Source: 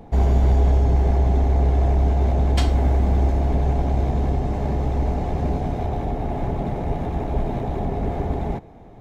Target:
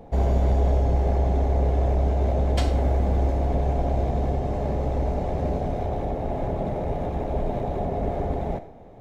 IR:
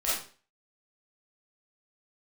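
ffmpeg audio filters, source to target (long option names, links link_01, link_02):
-filter_complex "[0:a]equalizer=frequency=550:width_type=o:width=0.58:gain=8,asplit=2[link_01][link_02];[1:a]atrim=start_sample=2205,adelay=11[link_03];[link_02][link_03]afir=irnorm=-1:irlink=0,volume=-19.5dB[link_04];[link_01][link_04]amix=inputs=2:normalize=0,volume=-4dB"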